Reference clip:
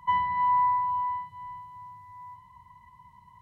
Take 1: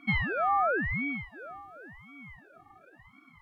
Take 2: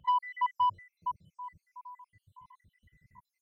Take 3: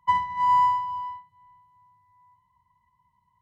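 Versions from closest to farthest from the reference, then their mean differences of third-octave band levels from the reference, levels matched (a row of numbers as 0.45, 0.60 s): 3, 2, 1; 3.0, 4.5, 9.0 dB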